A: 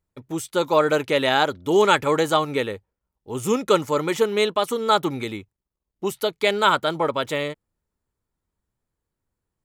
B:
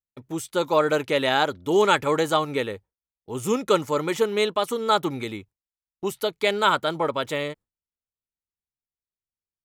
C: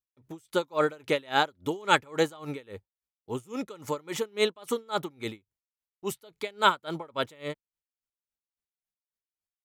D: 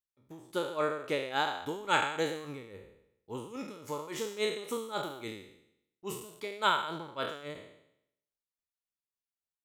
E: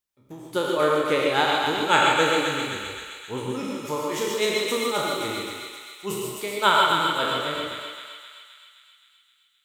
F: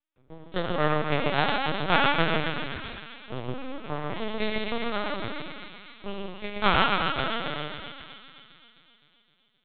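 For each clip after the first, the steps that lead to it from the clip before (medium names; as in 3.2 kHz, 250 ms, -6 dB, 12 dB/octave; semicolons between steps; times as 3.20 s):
gate with hold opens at -40 dBFS; trim -2 dB
logarithmic tremolo 3.6 Hz, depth 28 dB
spectral sustain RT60 0.76 s; trim -8 dB
thinning echo 261 ms, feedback 65%, high-pass 1.1 kHz, level -3.5 dB; gated-style reverb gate 170 ms rising, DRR 0.5 dB; trim +7.5 dB
half-wave rectifier; LPC vocoder at 8 kHz pitch kept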